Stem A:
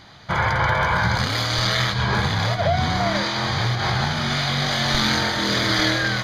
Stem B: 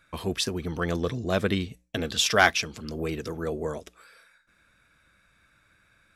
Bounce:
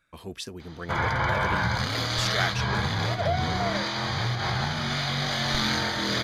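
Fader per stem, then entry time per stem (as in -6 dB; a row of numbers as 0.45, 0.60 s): -5.5, -9.0 dB; 0.60, 0.00 s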